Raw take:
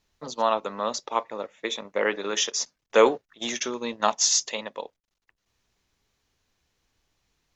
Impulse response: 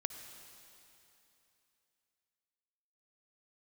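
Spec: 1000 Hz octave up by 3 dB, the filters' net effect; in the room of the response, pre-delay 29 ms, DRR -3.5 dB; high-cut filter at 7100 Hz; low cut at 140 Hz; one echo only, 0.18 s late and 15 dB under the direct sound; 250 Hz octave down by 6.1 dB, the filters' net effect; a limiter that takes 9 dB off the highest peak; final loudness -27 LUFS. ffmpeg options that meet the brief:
-filter_complex "[0:a]highpass=140,lowpass=7.1k,equalizer=f=250:t=o:g=-8.5,equalizer=f=1k:t=o:g=4,alimiter=limit=-13.5dB:level=0:latency=1,aecho=1:1:180:0.178,asplit=2[a][b];[1:a]atrim=start_sample=2205,adelay=29[c];[b][c]afir=irnorm=-1:irlink=0,volume=3.5dB[d];[a][d]amix=inputs=2:normalize=0,volume=-3.5dB"

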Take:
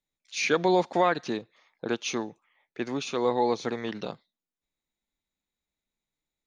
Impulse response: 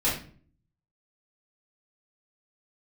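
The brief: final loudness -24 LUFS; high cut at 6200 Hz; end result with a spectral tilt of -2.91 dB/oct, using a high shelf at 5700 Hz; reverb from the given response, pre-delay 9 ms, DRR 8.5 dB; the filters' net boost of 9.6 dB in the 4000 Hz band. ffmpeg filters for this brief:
-filter_complex "[0:a]lowpass=6.2k,equalizer=f=4k:t=o:g=9,highshelf=f=5.7k:g=8.5,asplit=2[a][b];[1:a]atrim=start_sample=2205,adelay=9[c];[b][c]afir=irnorm=-1:irlink=0,volume=-20dB[d];[a][d]amix=inputs=2:normalize=0,volume=1.5dB"

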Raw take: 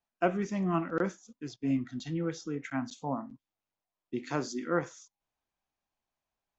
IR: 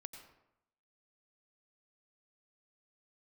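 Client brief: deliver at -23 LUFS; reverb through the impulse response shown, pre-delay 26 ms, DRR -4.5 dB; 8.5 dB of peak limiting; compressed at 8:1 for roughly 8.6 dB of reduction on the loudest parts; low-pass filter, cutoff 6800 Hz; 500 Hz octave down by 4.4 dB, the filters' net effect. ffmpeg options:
-filter_complex "[0:a]lowpass=6.8k,equalizer=f=500:t=o:g=-6,acompressor=threshold=-34dB:ratio=8,alimiter=level_in=6dB:limit=-24dB:level=0:latency=1,volume=-6dB,asplit=2[a][b];[1:a]atrim=start_sample=2205,adelay=26[c];[b][c]afir=irnorm=-1:irlink=0,volume=9.5dB[d];[a][d]amix=inputs=2:normalize=0,volume=13dB"

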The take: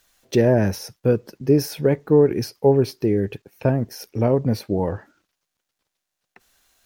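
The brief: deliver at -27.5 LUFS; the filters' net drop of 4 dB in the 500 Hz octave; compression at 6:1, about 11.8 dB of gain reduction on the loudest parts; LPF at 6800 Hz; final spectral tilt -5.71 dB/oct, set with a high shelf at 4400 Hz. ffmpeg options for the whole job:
-af "lowpass=6.8k,equalizer=f=500:t=o:g=-5,highshelf=f=4.4k:g=7,acompressor=threshold=-27dB:ratio=6,volume=5dB"

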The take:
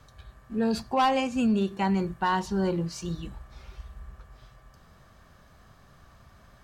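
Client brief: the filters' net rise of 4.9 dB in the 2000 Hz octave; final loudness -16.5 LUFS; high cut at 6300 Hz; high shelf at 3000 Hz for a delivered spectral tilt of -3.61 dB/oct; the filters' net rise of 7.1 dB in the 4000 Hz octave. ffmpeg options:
-af "lowpass=6.3k,equalizer=f=2k:t=o:g=3.5,highshelf=f=3k:g=4.5,equalizer=f=4k:t=o:g=5.5,volume=9.5dB"

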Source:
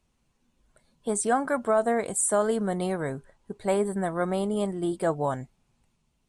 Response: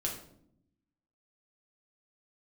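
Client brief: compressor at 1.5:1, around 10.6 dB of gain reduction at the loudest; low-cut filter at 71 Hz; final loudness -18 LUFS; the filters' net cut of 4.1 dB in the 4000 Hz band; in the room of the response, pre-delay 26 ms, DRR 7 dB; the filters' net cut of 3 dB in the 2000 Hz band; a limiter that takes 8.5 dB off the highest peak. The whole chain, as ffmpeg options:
-filter_complex "[0:a]highpass=71,equalizer=f=2k:t=o:g=-3.5,equalizer=f=4k:t=o:g=-4,acompressor=threshold=-50dB:ratio=1.5,alimiter=level_in=8dB:limit=-24dB:level=0:latency=1,volume=-8dB,asplit=2[a][b];[1:a]atrim=start_sample=2205,adelay=26[c];[b][c]afir=irnorm=-1:irlink=0,volume=-10dB[d];[a][d]amix=inputs=2:normalize=0,volume=22dB"

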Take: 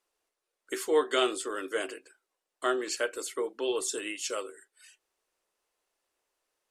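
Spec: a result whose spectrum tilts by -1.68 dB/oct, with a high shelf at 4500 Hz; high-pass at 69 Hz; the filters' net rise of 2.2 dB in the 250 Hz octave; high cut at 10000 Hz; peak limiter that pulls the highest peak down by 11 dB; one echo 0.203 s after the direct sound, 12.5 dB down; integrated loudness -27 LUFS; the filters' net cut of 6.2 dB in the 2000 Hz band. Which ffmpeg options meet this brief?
-af "highpass=69,lowpass=10k,equalizer=f=250:t=o:g=4,equalizer=f=2k:t=o:g=-7.5,highshelf=f=4.5k:g=-7.5,alimiter=level_in=1dB:limit=-24dB:level=0:latency=1,volume=-1dB,aecho=1:1:203:0.237,volume=9dB"

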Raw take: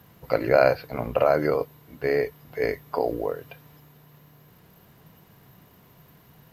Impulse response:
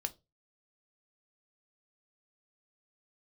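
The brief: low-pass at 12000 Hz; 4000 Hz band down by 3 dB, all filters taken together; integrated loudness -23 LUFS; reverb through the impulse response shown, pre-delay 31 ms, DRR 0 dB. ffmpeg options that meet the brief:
-filter_complex "[0:a]lowpass=12k,equalizer=f=4k:t=o:g=-3.5,asplit=2[a][b];[1:a]atrim=start_sample=2205,adelay=31[c];[b][c]afir=irnorm=-1:irlink=0,volume=0dB[d];[a][d]amix=inputs=2:normalize=0,volume=-1dB"

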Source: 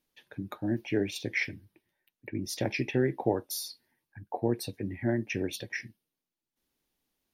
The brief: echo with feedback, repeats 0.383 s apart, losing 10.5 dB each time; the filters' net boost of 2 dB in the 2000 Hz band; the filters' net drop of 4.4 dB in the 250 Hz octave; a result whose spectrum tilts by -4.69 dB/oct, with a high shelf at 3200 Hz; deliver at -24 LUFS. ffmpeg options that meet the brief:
-af "equalizer=f=250:t=o:g=-6,equalizer=f=2k:t=o:g=4.5,highshelf=f=3.2k:g=-6.5,aecho=1:1:383|766|1149:0.299|0.0896|0.0269,volume=10dB"

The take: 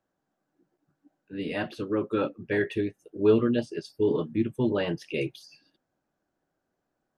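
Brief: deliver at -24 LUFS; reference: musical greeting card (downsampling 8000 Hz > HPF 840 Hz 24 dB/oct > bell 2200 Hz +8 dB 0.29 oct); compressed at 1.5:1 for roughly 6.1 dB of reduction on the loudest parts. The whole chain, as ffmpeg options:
-af "acompressor=threshold=-32dB:ratio=1.5,aresample=8000,aresample=44100,highpass=f=840:w=0.5412,highpass=f=840:w=1.3066,equalizer=f=2.2k:t=o:w=0.29:g=8,volume=16.5dB"

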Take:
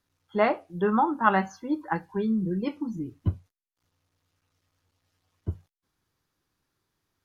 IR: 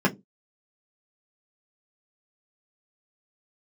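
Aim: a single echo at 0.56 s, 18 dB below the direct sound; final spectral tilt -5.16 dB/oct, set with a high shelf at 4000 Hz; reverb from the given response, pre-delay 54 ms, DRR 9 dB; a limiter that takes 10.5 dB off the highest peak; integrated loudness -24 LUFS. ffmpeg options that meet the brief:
-filter_complex "[0:a]highshelf=f=4k:g=5,alimiter=limit=-17dB:level=0:latency=1,aecho=1:1:560:0.126,asplit=2[a][b];[1:a]atrim=start_sample=2205,adelay=54[c];[b][c]afir=irnorm=-1:irlink=0,volume=-23.5dB[d];[a][d]amix=inputs=2:normalize=0,volume=3.5dB"

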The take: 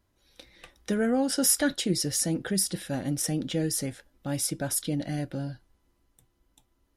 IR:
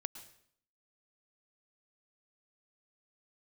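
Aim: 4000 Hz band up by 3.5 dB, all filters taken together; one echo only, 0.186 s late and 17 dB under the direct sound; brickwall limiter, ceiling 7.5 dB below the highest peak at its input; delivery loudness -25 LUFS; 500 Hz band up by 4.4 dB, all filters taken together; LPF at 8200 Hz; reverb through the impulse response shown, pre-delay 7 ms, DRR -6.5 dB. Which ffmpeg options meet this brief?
-filter_complex "[0:a]lowpass=8.2k,equalizer=f=500:t=o:g=5,equalizer=f=4k:t=o:g=5.5,alimiter=limit=-19.5dB:level=0:latency=1,aecho=1:1:186:0.141,asplit=2[a][b];[1:a]atrim=start_sample=2205,adelay=7[c];[b][c]afir=irnorm=-1:irlink=0,volume=8.5dB[d];[a][d]amix=inputs=2:normalize=0,volume=-4dB"

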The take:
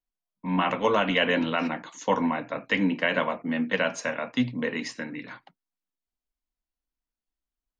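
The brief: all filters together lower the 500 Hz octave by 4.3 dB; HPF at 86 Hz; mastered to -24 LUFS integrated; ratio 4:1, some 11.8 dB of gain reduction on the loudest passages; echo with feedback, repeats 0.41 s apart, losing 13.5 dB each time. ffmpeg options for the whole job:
-af "highpass=86,equalizer=f=500:t=o:g=-5,acompressor=threshold=-35dB:ratio=4,aecho=1:1:410|820:0.211|0.0444,volume=14dB"

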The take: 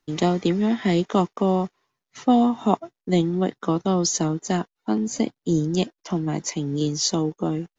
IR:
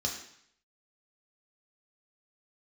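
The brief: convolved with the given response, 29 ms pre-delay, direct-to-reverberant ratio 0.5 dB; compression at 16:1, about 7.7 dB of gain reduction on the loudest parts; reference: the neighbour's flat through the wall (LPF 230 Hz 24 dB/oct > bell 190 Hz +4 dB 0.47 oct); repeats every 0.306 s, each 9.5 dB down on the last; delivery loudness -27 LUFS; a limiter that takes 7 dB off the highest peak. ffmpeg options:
-filter_complex "[0:a]acompressor=threshold=-20dB:ratio=16,alimiter=limit=-17dB:level=0:latency=1,aecho=1:1:306|612|918|1224:0.335|0.111|0.0365|0.012,asplit=2[a][b];[1:a]atrim=start_sample=2205,adelay=29[c];[b][c]afir=irnorm=-1:irlink=0,volume=-5dB[d];[a][d]amix=inputs=2:normalize=0,lowpass=f=230:w=0.5412,lowpass=f=230:w=1.3066,equalizer=f=190:t=o:w=0.47:g=4,volume=-1dB"

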